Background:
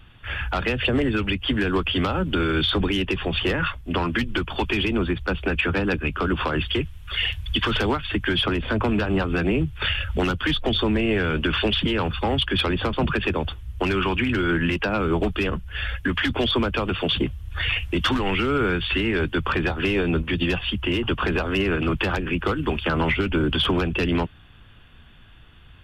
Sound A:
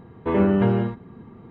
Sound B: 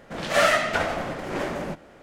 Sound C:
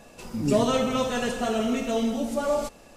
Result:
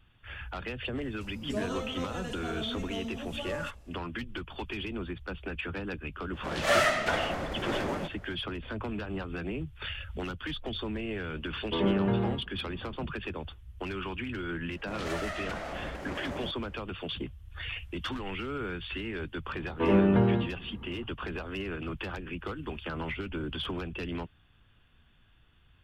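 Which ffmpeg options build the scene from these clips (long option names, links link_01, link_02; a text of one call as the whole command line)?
ffmpeg -i bed.wav -i cue0.wav -i cue1.wav -i cue2.wav -filter_complex "[2:a]asplit=2[link_01][link_02];[1:a]asplit=2[link_03][link_04];[0:a]volume=-13.5dB[link_05];[link_01]acontrast=87[link_06];[link_02]acompressor=threshold=-25dB:ratio=6:attack=3.2:release=140:knee=1:detection=peak[link_07];[3:a]atrim=end=2.96,asetpts=PTS-STARTPTS,volume=-13dB,afade=type=in:duration=0.004:curve=hsin,afade=type=out:start_time=2.956:duration=0.004:curve=hsin,adelay=1020[link_08];[link_06]atrim=end=2.02,asetpts=PTS-STARTPTS,volume=-11dB,afade=type=in:duration=0.004:curve=hsin,afade=type=out:start_time=2.016:duration=0.004:curve=hsin,adelay=6330[link_09];[link_03]atrim=end=1.5,asetpts=PTS-STARTPTS,volume=-8dB,afade=type=in:duration=0.004:curve=hsin,afade=type=out:start_time=1.496:duration=0.004:curve=hsin,adelay=505386S[link_10];[link_07]atrim=end=2.02,asetpts=PTS-STARTPTS,volume=-8dB,afade=type=in:duration=0.004:curve=hsin,afade=type=out:start_time=2.016:duration=0.004:curve=hsin,adelay=650916S[link_11];[link_04]atrim=end=1.5,asetpts=PTS-STARTPTS,volume=-4dB,afade=type=in:duration=0.004:curve=hsin,afade=type=out:start_time=1.496:duration=0.004:curve=hsin,adelay=19540[link_12];[link_05][link_08][link_09][link_10][link_11][link_12]amix=inputs=6:normalize=0" out.wav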